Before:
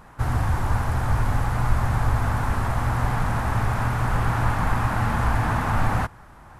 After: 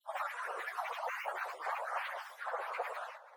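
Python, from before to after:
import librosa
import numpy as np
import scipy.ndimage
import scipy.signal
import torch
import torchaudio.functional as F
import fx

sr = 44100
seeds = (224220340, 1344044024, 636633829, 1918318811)

y = fx.spec_dropout(x, sr, seeds[0], share_pct=81)
y = scipy.signal.sosfilt(scipy.signal.butter(12, 570.0, 'highpass', fs=sr, output='sos'), y)
y = fx.peak_eq(y, sr, hz=8000.0, db=-13.5, octaves=1.6)
y = y + 10.0 ** (-23.5 / 20.0) * np.pad(y, (int(542 * sr / 1000.0), 0))[:len(y)]
y = fx.rider(y, sr, range_db=10, speed_s=2.0)
y = fx.high_shelf(y, sr, hz=5500.0, db=7.0)
y = fx.room_shoebox(y, sr, seeds[1], volume_m3=1000.0, walls='mixed', distance_m=1.8)
y = fx.granulator(y, sr, seeds[2], grain_ms=100.0, per_s=20.0, spray_ms=100.0, spread_st=7)
y = fx.stretch_vocoder_free(y, sr, factor=0.51)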